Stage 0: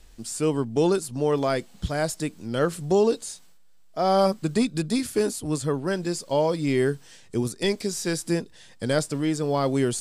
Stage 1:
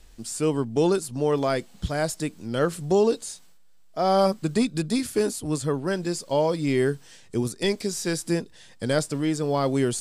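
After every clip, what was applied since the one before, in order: no audible change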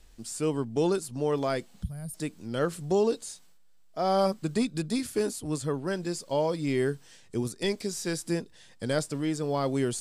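time-frequency box 1.83–2.14 s, 250–8500 Hz -21 dB; trim -4.5 dB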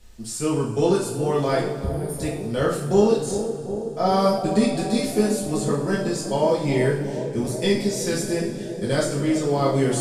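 bucket-brigade echo 372 ms, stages 2048, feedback 78%, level -10 dB; two-slope reverb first 0.51 s, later 3.1 s, from -18 dB, DRR -6 dB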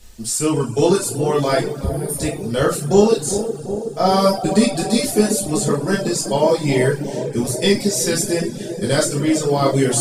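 reverb removal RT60 0.55 s; treble shelf 4.5 kHz +7.5 dB; trim +5 dB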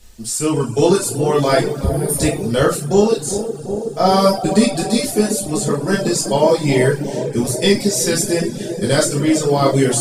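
level rider gain up to 8.5 dB; trim -1 dB

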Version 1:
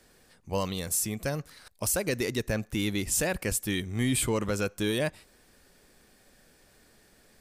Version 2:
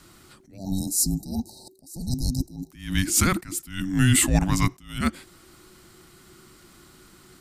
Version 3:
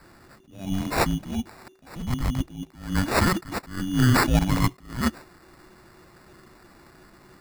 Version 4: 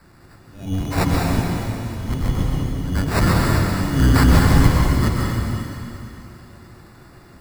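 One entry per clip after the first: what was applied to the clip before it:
frequency shift -380 Hz; spectral selection erased 0.57–2.71 s, 920–3800 Hz; attacks held to a fixed rise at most 120 dB/s; trim +8.5 dB
sample-and-hold 14×
octave divider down 1 oct, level +4 dB; plate-style reverb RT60 3 s, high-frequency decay 1×, pre-delay 115 ms, DRR -2.5 dB; trim -1 dB

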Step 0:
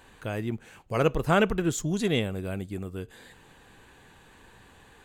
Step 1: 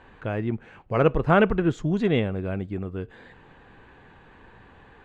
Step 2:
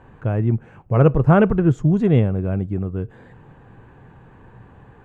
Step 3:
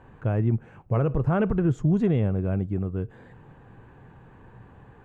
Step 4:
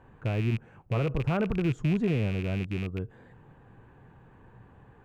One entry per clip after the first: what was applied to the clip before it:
low-pass 2.2 kHz 12 dB/octave; trim +4 dB
graphic EQ 125/2000/4000 Hz +10/-5/-11 dB; trim +3 dB
peak limiter -10.5 dBFS, peak gain reduction 9 dB; trim -3.5 dB
rattle on loud lows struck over -24 dBFS, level -24 dBFS; trim -4.5 dB

